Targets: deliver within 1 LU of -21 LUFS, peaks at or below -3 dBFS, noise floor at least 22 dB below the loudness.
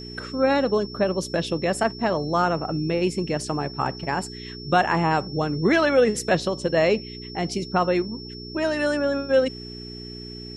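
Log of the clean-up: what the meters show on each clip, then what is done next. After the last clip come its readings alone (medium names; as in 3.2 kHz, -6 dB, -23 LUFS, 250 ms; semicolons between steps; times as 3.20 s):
hum 60 Hz; highest harmonic 420 Hz; hum level -37 dBFS; steady tone 5.4 kHz; tone level -39 dBFS; loudness -23.5 LUFS; peak level -6.5 dBFS; loudness target -21.0 LUFS
-> de-hum 60 Hz, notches 7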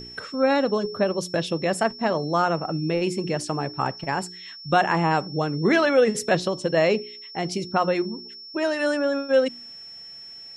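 hum not found; steady tone 5.4 kHz; tone level -39 dBFS
-> band-stop 5.4 kHz, Q 30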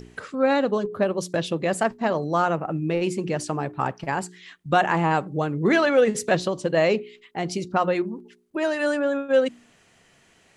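steady tone not found; loudness -24.0 LUFS; peak level -7.0 dBFS; loudness target -21.0 LUFS
-> trim +3 dB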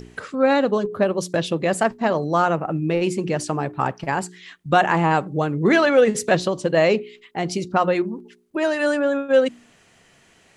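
loudness -21.0 LUFS; peak level -4.0 dBFS; noise floor -56 dBFS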